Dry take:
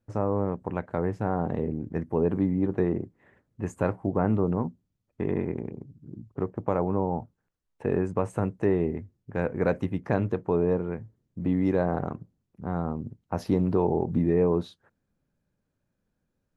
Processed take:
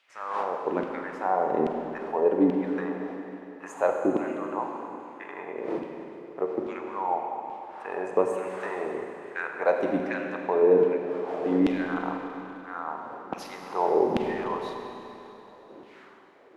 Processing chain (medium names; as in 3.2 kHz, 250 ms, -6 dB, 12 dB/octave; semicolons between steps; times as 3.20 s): wind noise 460 Hz -43 dBFS; LFO high-pass saw down 1.2 Hz 260–2900 Hz; Schroeder reverb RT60 3.2 s, combs from 33 ms, DRR 2.5 dB